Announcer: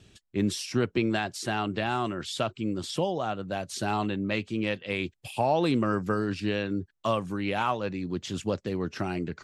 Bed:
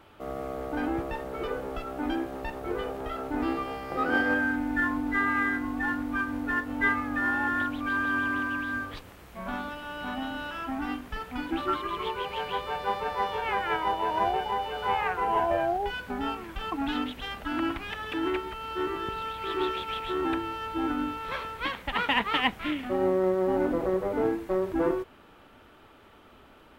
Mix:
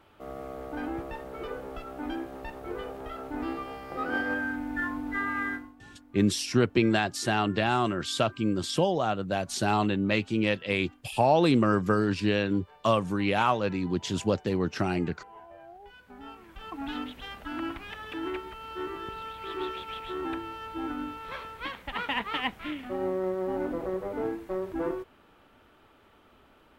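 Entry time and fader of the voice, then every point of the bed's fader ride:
5.80 s, +3.0 dB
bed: 5.54 s -4.5 dB
5.76 s -23.5 dB
15.54 s -23.5 dB
16.9 s -5 dB

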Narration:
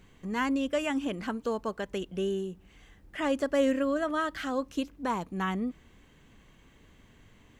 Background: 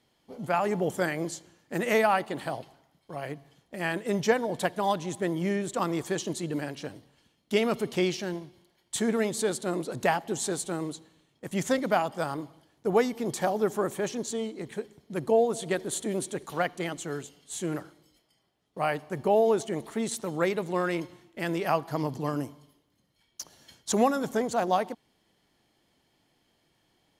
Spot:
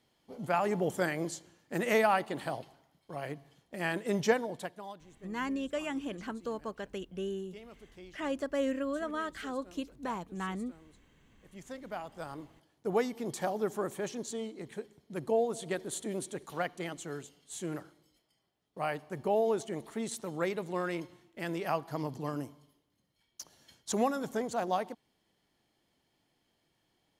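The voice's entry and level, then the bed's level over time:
5.00 s, -6.0 dB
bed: 4.33 s -3 dB
5.12 s -25 dB
11.22 s -25 dB
12.64 s -6 dB

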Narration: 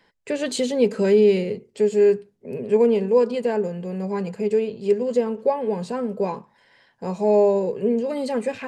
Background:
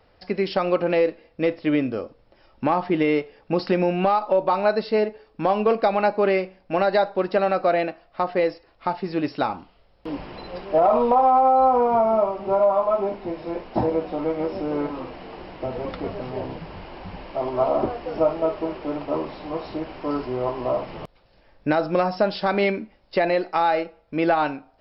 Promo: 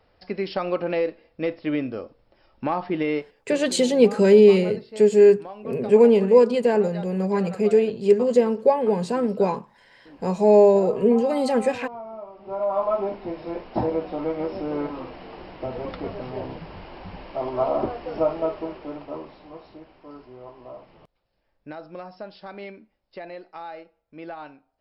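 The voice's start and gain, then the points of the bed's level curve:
3.20 s, +3.0 dB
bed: 3.17 s -4 dB
3.58 s -18 dB
12.26 s -18 dB
12.81 s -2 dB
18.41 s -2 dB
20.01 s -17 dB

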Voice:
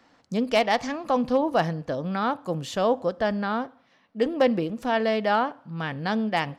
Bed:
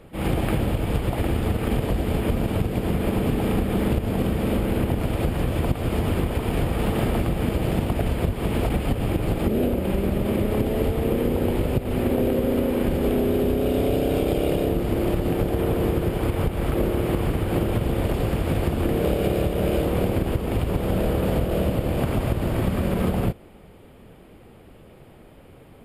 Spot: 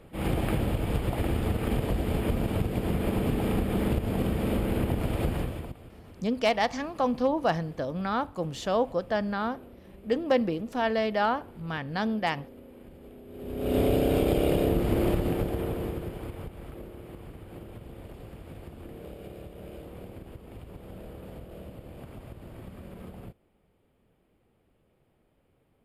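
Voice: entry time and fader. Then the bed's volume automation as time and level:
5.90 s, -3.0 dB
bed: 5.36 s -4.5 dB
5.94 s -26.5 dB
13.26 s -26.5 dB
13.76 s -2 dB
15.06 s -2 dB
16.89 s -21 dB

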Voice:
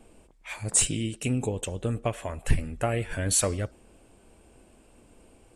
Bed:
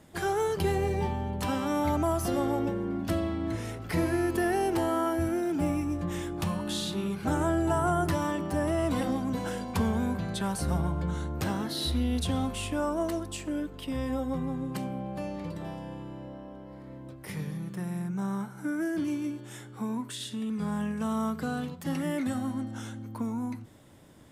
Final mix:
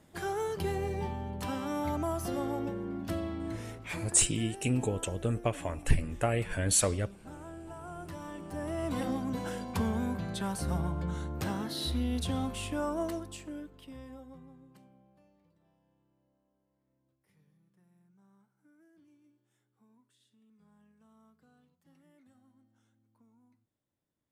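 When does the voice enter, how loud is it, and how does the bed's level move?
3.40 s, -2.0 dB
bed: 3.71 s -5.5 dB
4.23 s -19 dB
7.8 s -19 dB
9.06 s -3.5 dB
13.04 s -3.5 dB
15.51 s -33.5 dB

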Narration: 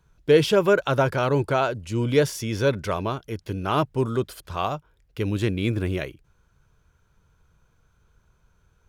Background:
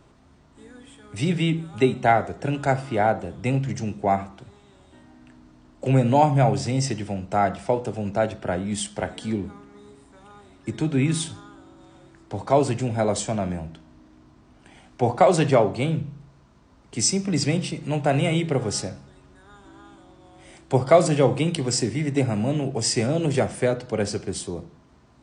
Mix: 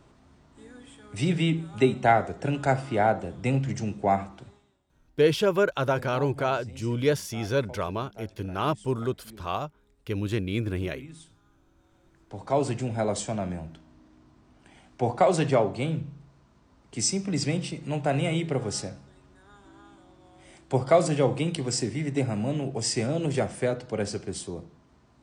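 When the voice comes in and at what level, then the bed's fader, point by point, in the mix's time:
4.90 s, -4.0 dB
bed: 4.47 s -2 dB
4.83 s -22.5 dB
11.38 s -22.5 dB
12.66 s -4.5 dB

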